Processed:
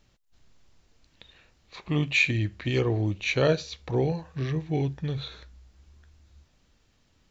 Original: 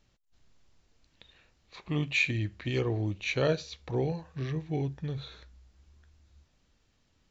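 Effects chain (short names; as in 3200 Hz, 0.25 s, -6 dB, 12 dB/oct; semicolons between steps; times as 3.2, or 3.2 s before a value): 4.75–5.28 dynamic EQ 3000 Hz, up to +4 dB, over -55 dBFS, Q 1; gain +4.5 dB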